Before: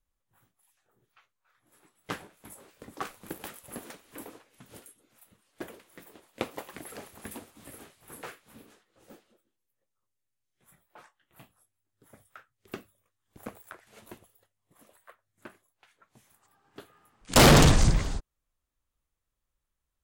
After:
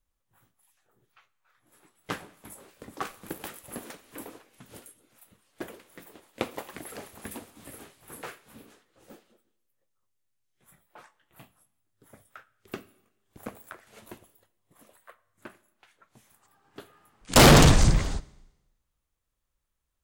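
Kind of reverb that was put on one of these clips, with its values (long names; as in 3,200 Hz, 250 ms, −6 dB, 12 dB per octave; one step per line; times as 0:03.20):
four-comb reverb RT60 0.98 s, combs from 29 ms, DRR 19 dB
level +2 dB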